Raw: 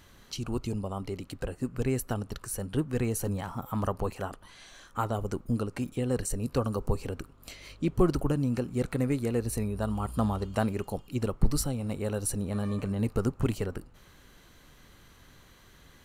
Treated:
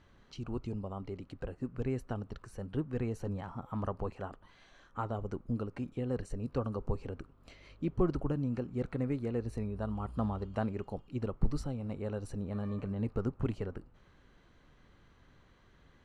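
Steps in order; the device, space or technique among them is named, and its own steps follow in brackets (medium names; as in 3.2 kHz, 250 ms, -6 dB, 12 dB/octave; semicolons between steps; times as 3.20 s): through cloth (low-pass 6.6 kHz 12 dB/octave; treble shelf 3.4 kHz -13 dB); trim -5.5 dB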